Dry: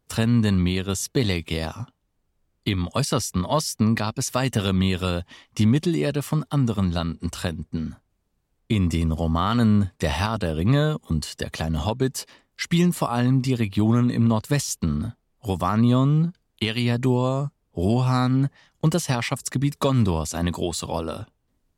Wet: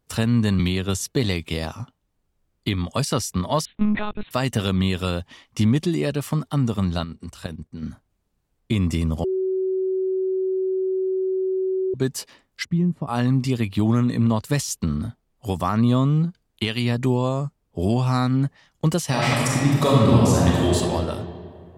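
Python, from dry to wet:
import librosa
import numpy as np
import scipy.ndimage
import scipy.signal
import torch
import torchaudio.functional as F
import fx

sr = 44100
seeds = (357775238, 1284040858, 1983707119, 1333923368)

y = fx.band_squash(x, sr, depth_pct=100, at=(0.59, 1.01))
y = fx.lpc_monotone(y, sr, seeds[0], pitch_hz=210.0, order=10, at=(3.65, 4.31))
y = fx.level_steps(y, sr, step_db=11, at=(7.04, 7.83))
y = fx.bandpass_q(y, sr, hz=120.0, q=0.65, at=(12.63, 13.07), fade=0.02)
y = fx.reverb_throw(y, sr, start_s=19.09, length_s=1.66, rt60_s=2.3, drr_db=-5.0)
y = fx.edit(y, sr, fx.bleep(start_s=9.24, length_s=2.7, hz=377.0, db=-20.0), tone=tone)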